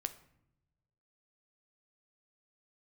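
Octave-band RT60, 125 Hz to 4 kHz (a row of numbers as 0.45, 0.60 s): 1.7, 1.3, 0.90, 0.75, 0.65, 0.50 s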